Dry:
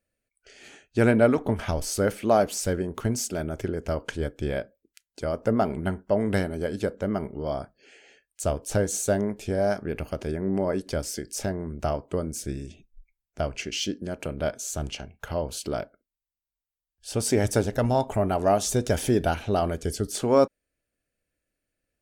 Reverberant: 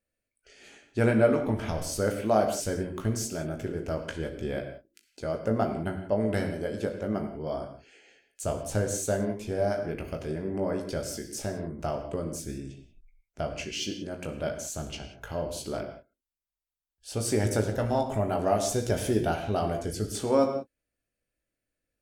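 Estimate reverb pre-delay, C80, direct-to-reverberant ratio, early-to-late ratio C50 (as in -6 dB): 19 ms, 9.0 dB, 3.0 dB, 7.5 dB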